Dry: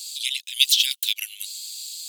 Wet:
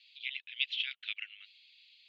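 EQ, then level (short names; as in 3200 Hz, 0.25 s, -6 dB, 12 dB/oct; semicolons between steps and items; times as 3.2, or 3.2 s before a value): LPF 2400 Hz 24 dB/oct; air absorption 170 m; 0.0 dB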